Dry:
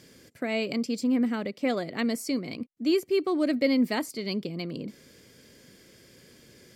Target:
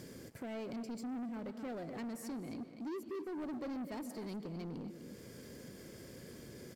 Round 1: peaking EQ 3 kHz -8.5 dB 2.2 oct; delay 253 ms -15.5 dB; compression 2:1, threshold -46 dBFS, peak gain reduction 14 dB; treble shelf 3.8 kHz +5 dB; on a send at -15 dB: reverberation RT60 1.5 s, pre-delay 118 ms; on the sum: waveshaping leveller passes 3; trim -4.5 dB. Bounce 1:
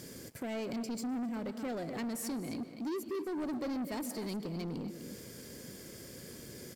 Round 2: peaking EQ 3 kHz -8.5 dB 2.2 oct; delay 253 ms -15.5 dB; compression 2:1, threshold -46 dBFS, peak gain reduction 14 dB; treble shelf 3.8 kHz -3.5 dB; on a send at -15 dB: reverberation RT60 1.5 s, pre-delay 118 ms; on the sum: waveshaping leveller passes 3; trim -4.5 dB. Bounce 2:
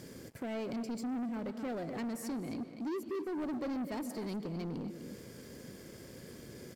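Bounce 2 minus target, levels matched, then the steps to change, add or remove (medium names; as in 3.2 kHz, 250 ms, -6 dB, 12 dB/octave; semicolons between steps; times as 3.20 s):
compression: peak gain reduction -4.5 dB
change: compression 2:1, threshold -55 dBFS, peak gain reduction 18.5 dB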